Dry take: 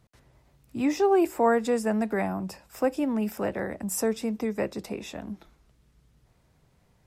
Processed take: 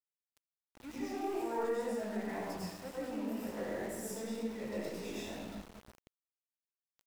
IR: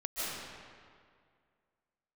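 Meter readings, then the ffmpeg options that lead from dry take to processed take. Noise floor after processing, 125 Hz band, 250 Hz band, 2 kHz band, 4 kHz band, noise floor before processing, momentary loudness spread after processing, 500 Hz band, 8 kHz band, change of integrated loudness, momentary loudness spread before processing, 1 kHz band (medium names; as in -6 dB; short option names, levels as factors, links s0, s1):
under -85 dBFS, -10.5 dB, -12.0 dB, -10.5 dB, -6.5 dB, -65 dBFS, 11 LU, -12.0 dB, -11.0 dB, -12.0 dB, 16 LU, -12.5 dB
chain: -filter_complex "[0:a]areverse,acompressor=threshold=0.01:ratio=4,areverse,aeval=exprs='0.0316*(cos(1*acos(clip(val(0)/0.0316,-1,1)))-cos(1*PI/2))+0.00398*(cos(3*acos(clip(val(0)/0.0316,-1,1)))-cos(3*PI/2))+0.000447*(cos(4*acos(clip(val(0)/0.0316,-1,1)))-cos(4*PI/2))+0.00126*(cos(5*acos(clip(val(0)/0.0316,-1,1)))-cos(5*PI/2))+0.000316*(cos(6*acos(clip(val(0)/0.0316,-1,1)))-cos(6*PI/2))':c=same[s0];[1:a]atrim=start_sample=2205,asetrate=66150,aresample=44100[s1];[s0][s1]afir=irnorm=-1:irlink=0,flanger=delay=17:depth=7.3:speed=2,aeval=exprs='val(0)*gte(abs(val(0)),0.00237)':c=same,volume=1.68"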